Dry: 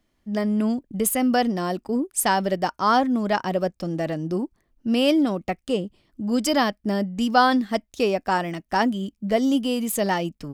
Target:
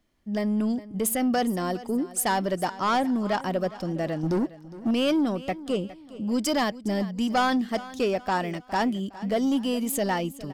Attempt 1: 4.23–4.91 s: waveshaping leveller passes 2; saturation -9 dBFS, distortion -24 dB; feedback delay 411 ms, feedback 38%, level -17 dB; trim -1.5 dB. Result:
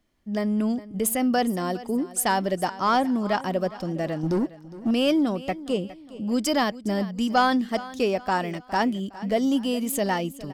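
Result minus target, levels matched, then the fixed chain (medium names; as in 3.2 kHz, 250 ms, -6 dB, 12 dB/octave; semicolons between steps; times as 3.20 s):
saturation: distortion -9 dB
4.23–4.91 s: waveshaping leveller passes 2; saturation -16 dBFS, distortion -15 dB; feedback delay 411 ms, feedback 38%, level -17 dB; trim -1.5 dB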